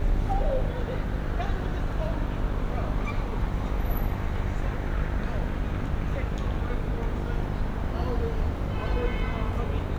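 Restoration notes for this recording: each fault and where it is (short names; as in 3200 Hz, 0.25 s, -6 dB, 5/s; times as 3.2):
buzz 50 Hz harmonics 18 -32 dBFS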